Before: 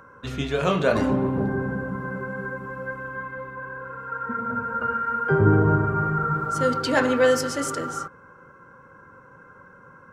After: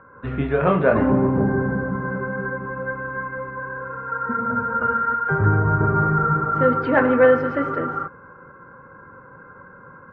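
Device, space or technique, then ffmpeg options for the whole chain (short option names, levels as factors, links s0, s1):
action camera in a waterproof case: -filter_complex "[0:a]asettb=1/sr,asplit=3[s0][s1][s2];[s0]atrim=end=5.144[s3];[s1]atrim=start=5.14:end=5.81,asetpts=PTS-STARTPTS,afade=t=in:d=0.004:c=qsin,afade=t=out:st=0.666:d=0.004:c=qsin,equalizer=f=310:t=o:w=2.1:g=-11.5[s4];[s2]atrim=start=5.806[s5];[s3][s4]acrossfade=d=0.004:c1=hsin:c2=qsin[s6];[s6][s5]acrossfade=d=0.004:c1=qsin:c2=hsin,lowpass=f=2000:w=0.5412,lowpass=f=2000:w=1.3066,dynaudnorm=f=100:g=3:m=1.78" -ar 48000 -c:a aac -b:a 48k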